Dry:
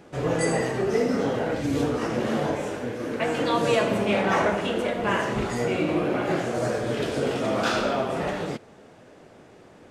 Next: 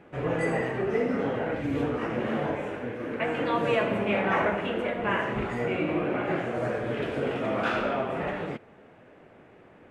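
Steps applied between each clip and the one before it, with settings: resonant high shelf 3.5 kHz -12 dB, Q 1.5; trim -3.5 dB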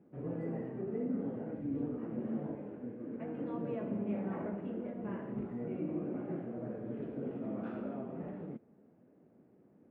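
band-pass filter 220 Hz, Q 1.6; trim -4.5 dB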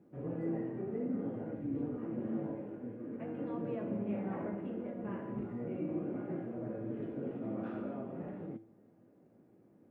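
feedback comb 110 Hz, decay 0.42 s, harmonics odd, mix 70%; trim +9 dB

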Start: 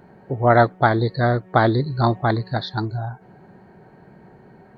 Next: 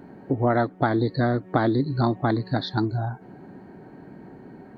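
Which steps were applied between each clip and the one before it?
peaking EQ 280 Hz +12.5 dB 0.52 oct; compression 3:1, threshold -20 dBFS, peak gain reduction 10 dB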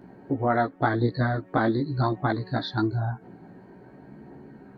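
dynamic bell 1.5 kHz, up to +4 dB, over -41 dBFS, Q 1.2; chorus voices 2, 0.46 Hz, delay 16 ms, depth 2.2 ms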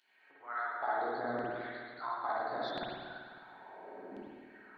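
compression, threshold -32 dBFS, peak gain reduction 13.5 dB; LFO high-pass saw down 0.72 Hz 320–3200 Hz; reverberation RT60 1.8 s, pre-delay 50 ms, DRR -6.5 dB; trim -6.5 dB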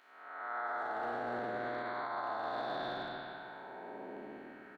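spectral blur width 500 ms; speakerphone echo 190 ms, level -8 dB; peak limiter -34 dBFS, peak gain reduction 6.5 dB; trim +4.5 dB

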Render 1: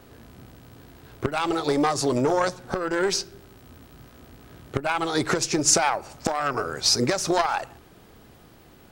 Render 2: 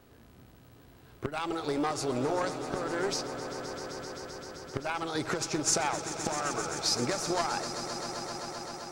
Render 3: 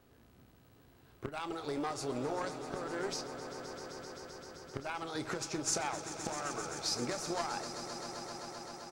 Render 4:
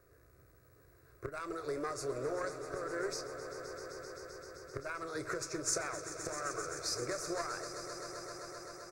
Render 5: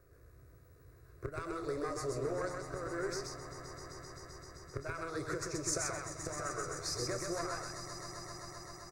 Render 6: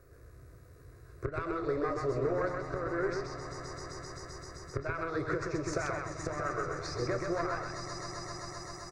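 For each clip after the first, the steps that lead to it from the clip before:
echo with a slow build-up 130 ms, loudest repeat 5, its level -13.5 dB; trim -8.5 dB
doubling 29 ms -13.5 dB; trim -6.5 dB
static phaser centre 840 Hz, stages 6; trim +2 dB
bass shelf 210 Hz +8 dB; delay 129 ms -3.5 dB; trim -2 dB
integer overflow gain 23 dB; low-pass that closes with the level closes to 2.9 kHz, closed at -37 dBFS; trim +5.5 dB

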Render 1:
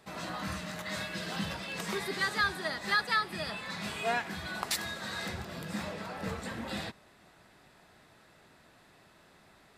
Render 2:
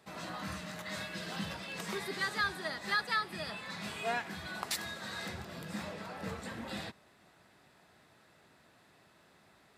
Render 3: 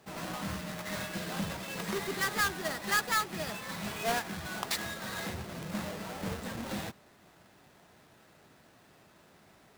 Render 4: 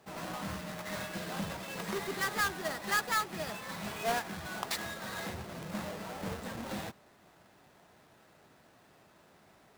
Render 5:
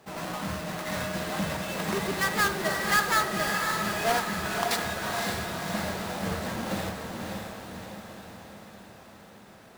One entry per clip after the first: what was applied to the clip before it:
high-pass 64 Hz; trim -3.5 dB
square wave that keeps the level; trim -1 dB
peaking EQ 770 Hz +3 dB 2 oct; trim -3 dB
echo that smears into a reverb 557 ms, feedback 58%, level -4 dB; reverberation RT60 0.45 s, pre-delay 32 ms, DRR 12.5 dB; trim +5.5 dB

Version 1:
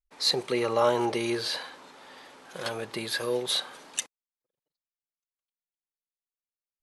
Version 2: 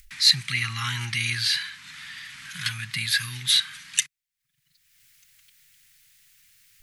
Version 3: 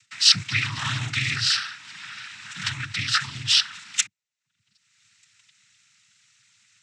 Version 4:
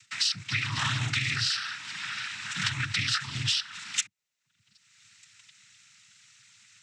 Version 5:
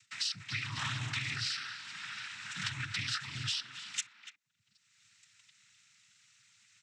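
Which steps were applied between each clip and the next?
Chebyshev band-stop 140–1900 Hz, order 3; peaking EQ 570 Hz +12 dB 2.6 oct; upward compressor, threshold -42 dBFS; trim +8 dB
noise-vocoded speech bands 12; trim +2 dB
compression 16:1, threshold -28 dBFS, peak gain reduction 18.5 dB; trim +3.5 dB
speakerphone echo 290 ms, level -9 dB; trim -8 dB

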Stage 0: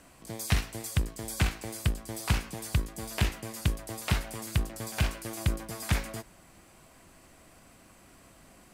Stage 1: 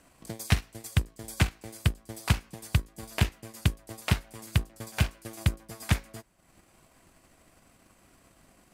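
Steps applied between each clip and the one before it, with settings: transient shaper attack +8 dB, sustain -8 dB; trim -4.5 dB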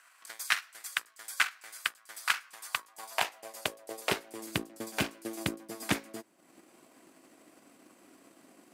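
high-pass sweep 1.4 kHz -> 290 Hz, 2.44–4.54 s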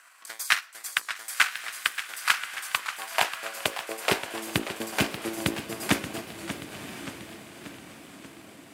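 echo that smears into a reverb 1053 ms, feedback 45%, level -12 dB; modulated delay 582 ms, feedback 56%, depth 175 cents, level -11.5 dB; trim +5.5 dB

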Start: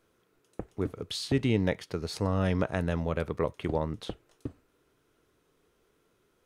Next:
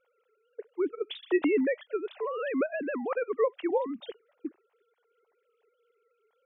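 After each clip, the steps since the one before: formants replaced by sine waves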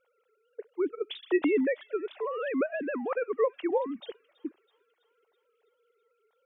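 feedback echo behind a high-pass 327 ms, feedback 60%, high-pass 2.5 kHz, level -20 dB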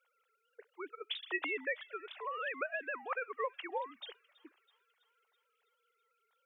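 high-pass 1.1 kHz 12 dB/octave; trim +1 dB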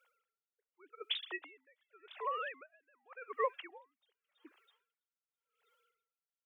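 logarithmic tremolo 0.87 Hz, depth 36 dB; trim +3.5 dB

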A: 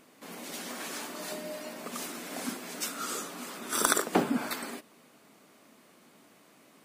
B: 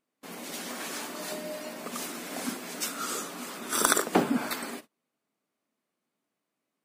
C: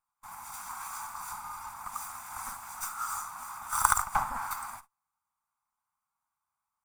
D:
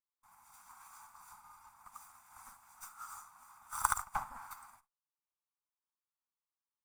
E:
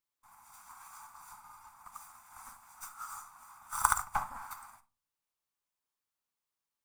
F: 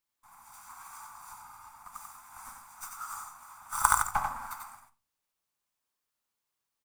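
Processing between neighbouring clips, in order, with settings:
gate -47 dBFS, range -27 dB; trim +2 dB
comb filter that takes the minimum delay 0.84 ms; FFT filter 110 Hz 0 dB, 410 Hz -28 dB, 840 Hz +13 dB, 1.5 kHz +7 dB, 2.4 kHz -5 dB, 3.5 kHz -9 dB, 7.4 kHz +5 dB; trim -6.5 dB
upward expansion 1.5:1, over -45 dBFS; trim -6.5 dB
simulated room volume 200 m³, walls furnished, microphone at 0.32 m; trim +4 dB
delay 91 ms -4.5 dB; trim +3 dB

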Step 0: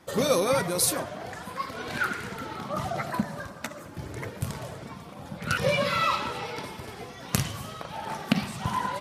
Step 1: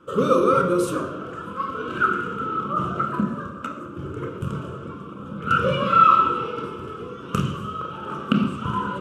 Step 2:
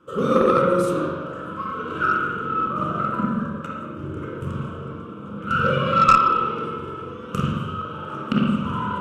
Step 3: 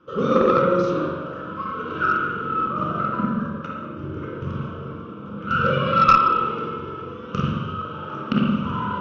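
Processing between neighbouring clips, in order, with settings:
FFT filter 140 Hz 0 dB, 480 Hz +7 dB, 750 Hz -16 dB, 1.3 kHz +14 dB, 1.9 kHz -17 dB, 2.9 kHz +3 dB, 4.3 kHz -17 dB, 7.9 kHz -9 dB, 11 kHz -17 dB; on a send at -2.5 dB: reverberation RT60 0.80 s, pre-delay 22 ms
spring tank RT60 1.2 s, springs 44/57 ms, chirp 30 ms, DRR -2 dB; Chebyshev shaper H 4 -15 dB, 6 -19 dB, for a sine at 1 dBFS; trim -4 dB
steep low-pass 6.1 kHz 72 dB/octave

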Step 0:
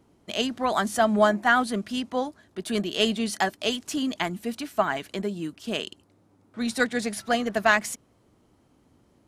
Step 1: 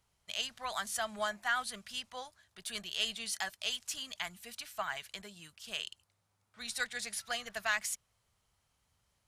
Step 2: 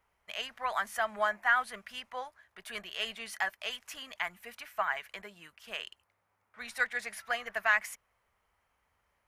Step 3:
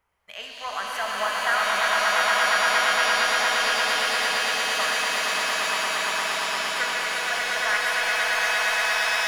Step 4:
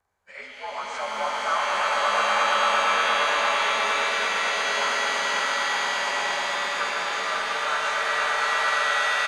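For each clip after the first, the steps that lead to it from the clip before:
amplifier tone stack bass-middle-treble 10-0-10; in parallel at -2.5 dB: peak limiter -22.5 dBFS, peak gain reduction 10 dB; on the sum: trim -7.5 dB
graphic EQ 125/500/1000/2000/4000/8000 Hz -9/+4/+5/+8/-8/-9 dB
echo with a slow build-up 116 ms, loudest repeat 8, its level -3.5 dB; pitch-shifted reverb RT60 3.3 s, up +7 st, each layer -2 dB, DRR 1 dB
frequency axis rescaled in octaves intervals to 88%; delay 546 ms -4.5 dB

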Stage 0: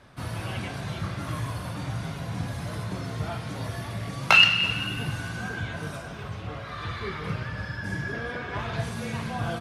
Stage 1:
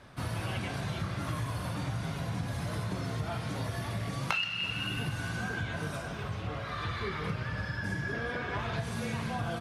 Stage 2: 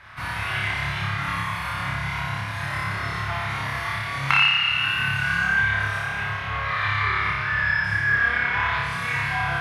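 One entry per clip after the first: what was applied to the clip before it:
compression 6:1, threshold -30 dBFS, peak gain reduction 17 dB
ten-band graphic EQ 250 Hz -11 dB, 500 Hz -9 dB, 1 kHz +6 dB, 2 kHz +12 dB, 8 kHz -5 dB; flutter echo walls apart 5 m, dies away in 1.1 s; trim +1.5 dB

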